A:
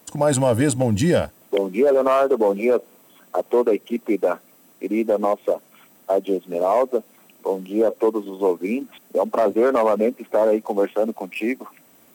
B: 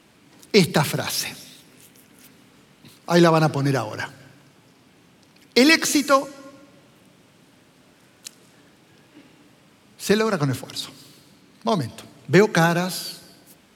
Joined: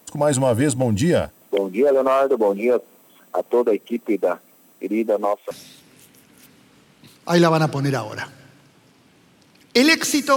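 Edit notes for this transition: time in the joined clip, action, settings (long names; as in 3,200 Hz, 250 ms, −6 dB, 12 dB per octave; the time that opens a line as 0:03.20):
A
0:05.07–0:05.51: high-pass filter 170 Hz → 840 Hz
0:05.51: continue with B from 0:01.32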